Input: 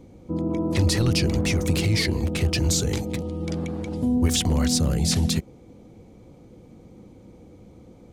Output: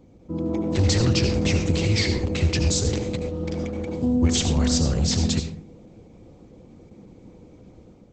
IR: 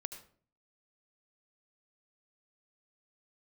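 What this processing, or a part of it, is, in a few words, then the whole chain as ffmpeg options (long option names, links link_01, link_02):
speakerphone in a meeting room: -filter_complex "[1:a]atrim=start_sample=2205[link_01];[0:a][link_01]afir=irnorm=-1:irlink=0,dynaudnorm=framelen=100:gausssize=7:maxgain=5dB,volume=-1.5dB" -ar 48000 -c:a libopus -b:a 12k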